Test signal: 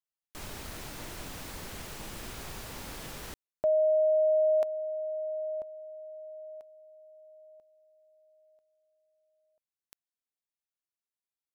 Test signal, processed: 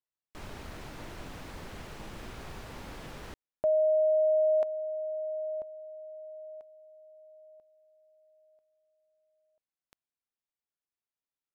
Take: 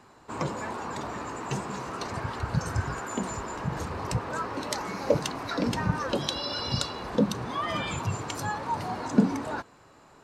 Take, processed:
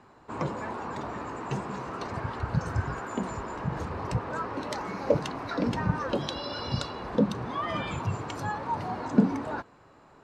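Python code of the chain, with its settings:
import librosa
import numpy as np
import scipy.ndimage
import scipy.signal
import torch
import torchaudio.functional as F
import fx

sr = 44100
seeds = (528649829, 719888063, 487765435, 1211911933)

y = fx.lowpass(x, sr, hz=2300.0, slope=6)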